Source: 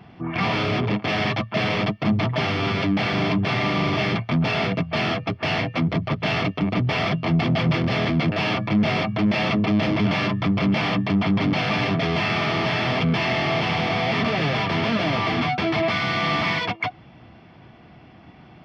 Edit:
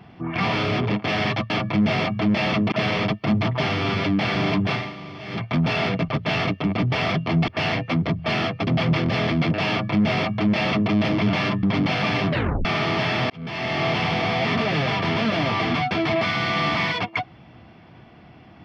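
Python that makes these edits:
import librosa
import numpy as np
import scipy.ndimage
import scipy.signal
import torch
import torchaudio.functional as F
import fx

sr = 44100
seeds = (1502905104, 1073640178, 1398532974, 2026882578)

y = fx.edit(x, sr, fx.fade_down_up(start_s=3.5, length_s=0.73, db=-15.0, fade_s=0.26, curve='qua'),
    fx.swap(start_s=4.86, length_s=0.48, other_s=6.05, other_length_s=1.4),
    fx.duplicate(start_s=8.47, length_s=1.22, to_s=1.5),
    fx.cut(start_s=10.41, length_s=0.89),
    fx.tape_stop(start_s=11.97, length_s=0.35),
    fx.fade_in_span(start_s=12.97, length_s=0.54), tone=tone)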